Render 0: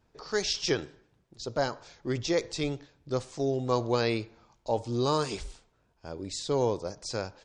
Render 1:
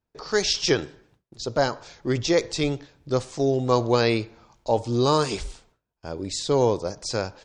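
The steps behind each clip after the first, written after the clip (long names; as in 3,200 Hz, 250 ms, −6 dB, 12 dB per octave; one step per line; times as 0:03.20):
noise gate with hold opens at −57 dBFS
level +6.5 dB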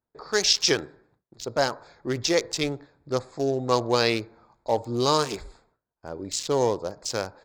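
adaptive Wiener filter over 15 samples
spectral tilt +2 dB per octave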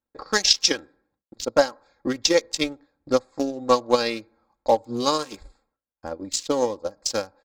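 comb filter 3.7 ms, depth 64%
transient designer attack +10 dB, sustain −7 dB
level −4 dB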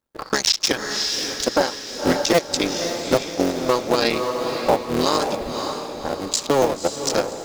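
sub-harmonics by changed cycles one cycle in 3, muted
feedback delay with all-pass diffusion 557 ms, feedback 47%, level −9.5 dB
brickwall limiter −13 dBFS, peak gain reduction 11 dB
level +7.5 dB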